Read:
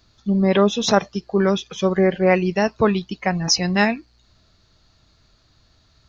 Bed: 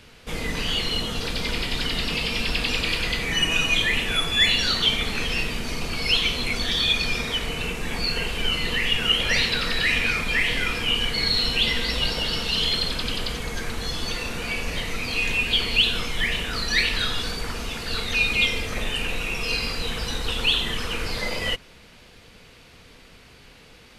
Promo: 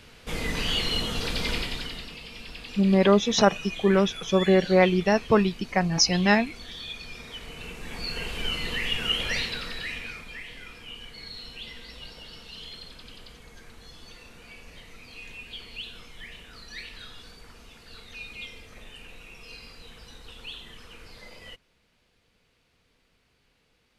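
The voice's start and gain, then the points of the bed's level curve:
2.50 s, -2.5 dB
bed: 1.54 s -1.5 dB
2.16 s -16.5 dB
7.07 s -16.5 dB
8.35 s -5.5 dB
9.23 s -5.5 dB
10.45 s -19 dB

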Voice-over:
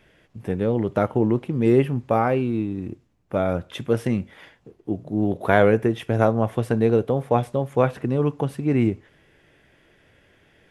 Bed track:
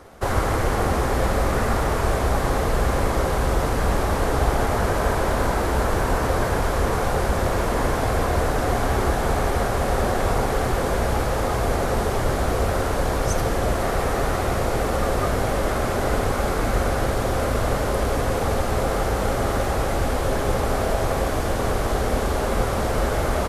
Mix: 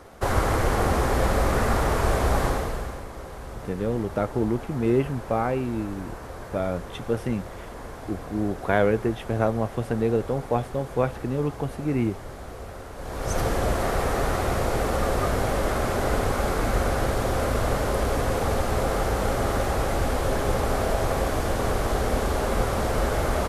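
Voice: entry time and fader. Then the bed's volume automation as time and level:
3.20 s, -4.5 dB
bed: 2.44 s -1 dB
3.06 s -16.5 dB
12.94 s -16.5 dB
13.39 s -2 dB

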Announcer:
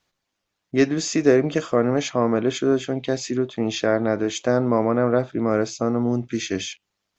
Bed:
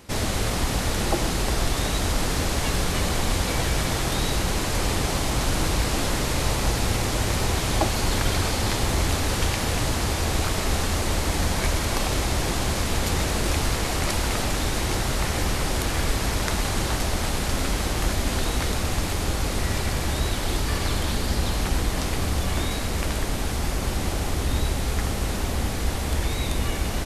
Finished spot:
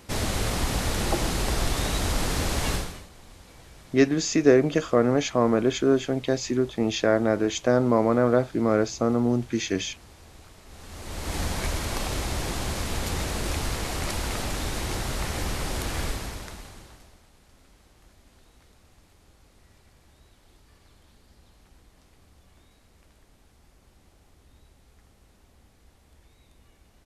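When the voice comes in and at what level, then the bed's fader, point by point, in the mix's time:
3.20 s, -1.0 dB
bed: 2.74 s -2 dB
3.09 s -25.5 dB
10.65 s -25.5 dB
11.36 s -5 dB
16.05 s -5 dB
17.26 s -32.5 dB

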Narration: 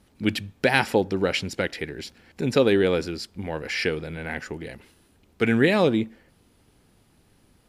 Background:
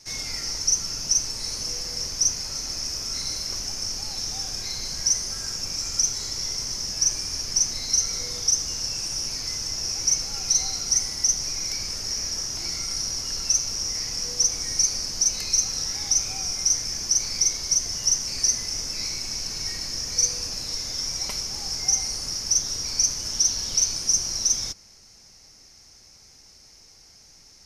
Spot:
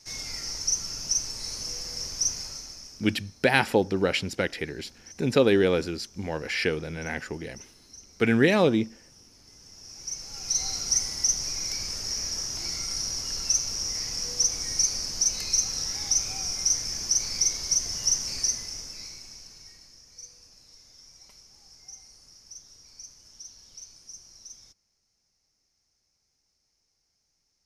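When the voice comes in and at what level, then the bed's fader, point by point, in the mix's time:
2.80 s, -1.0 dB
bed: 2.42 s -4.5 dB
3.32 s -26.5 dB
9.4 s -26.5 dB
10.69 s -2.5 dB
18.31 s -2.5 dB
20.03 s -23.5 dB

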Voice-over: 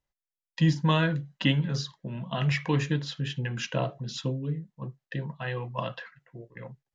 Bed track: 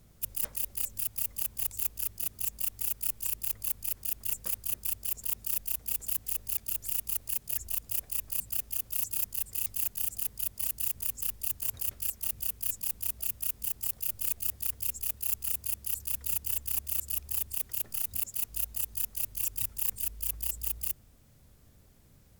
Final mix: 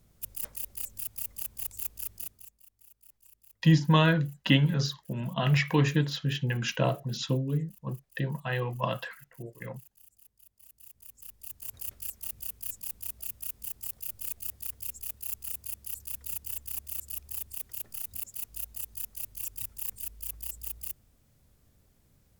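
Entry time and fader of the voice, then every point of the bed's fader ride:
3.05 s, +2.0 dB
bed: 2.21 s -4 dB
2.6 s -25.5 dB
10.55 s -25.5 dB
11.84 s -5 dB

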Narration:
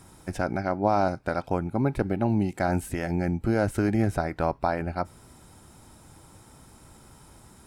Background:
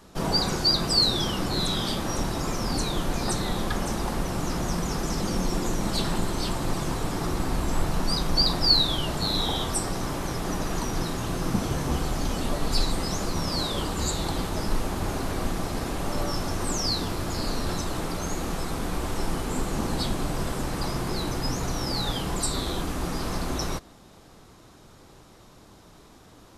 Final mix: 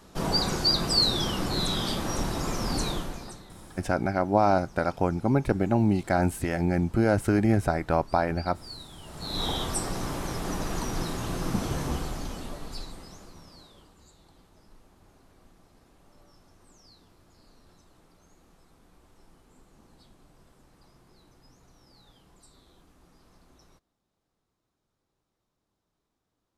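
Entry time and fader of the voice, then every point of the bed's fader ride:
3.50 s, +1.5 dB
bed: 2.9 s -1.5 dB
3.52 s -23.5 dB
8.92 s -23.5 dB
9.44 s -2.5 dB
11.83 s -2.5 dB
14.06 s -30 dB

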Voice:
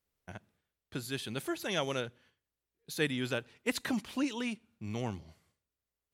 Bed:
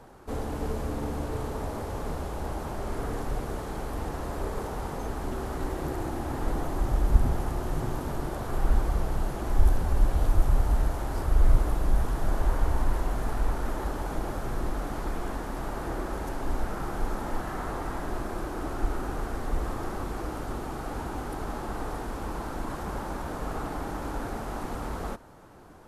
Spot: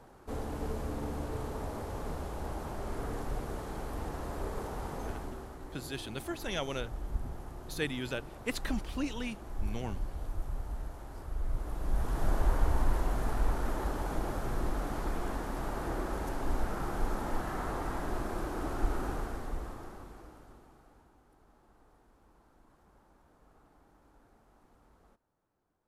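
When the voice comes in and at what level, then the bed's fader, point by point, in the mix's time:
4.80 s, -2.5 dB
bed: 5.09 s -5 dB
5.59 s -14.5 dB
11.49 s -14.5 dB
12.22 s -2.5 dB
19.09 s -2.5 dB
21.18 s -30 dB

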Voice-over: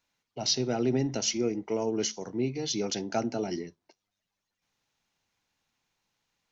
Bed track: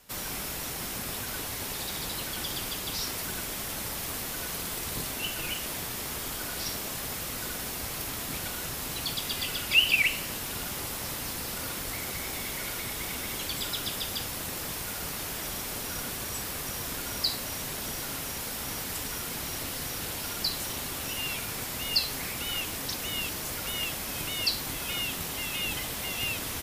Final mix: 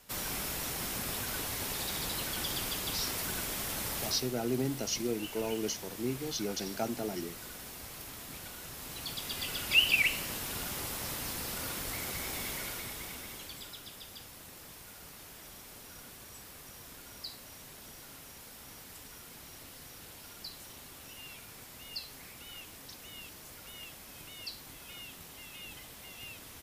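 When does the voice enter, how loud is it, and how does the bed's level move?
3.65 s, -5.0 dB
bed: 4.05 s -1.5 dB
4.34 s -10.5 dB
8.62 s -10.5 dB
9.75 s -3 dB
12.5 s -3 dB
13.83 s -15 dB

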